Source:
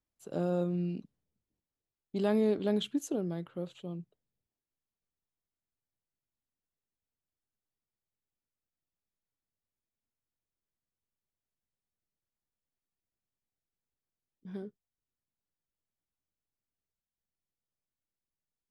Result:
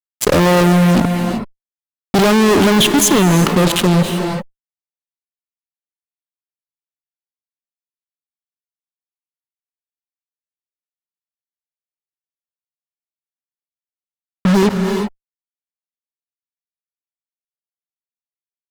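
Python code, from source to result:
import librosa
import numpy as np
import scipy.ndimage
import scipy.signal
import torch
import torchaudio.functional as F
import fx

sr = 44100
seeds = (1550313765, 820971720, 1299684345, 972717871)

y = fx.fuzz(x, sr, gain_db=56.0, gate_db=-52.0)
y = fx.rev_gated(y, sr, seeds[0], gate_ms=400, shape='rising', drr_db=10.0)
y = fx.env_flatten(y, sr, amount_pct=50)
y = y * librosa.db_to_amplitude(2.5)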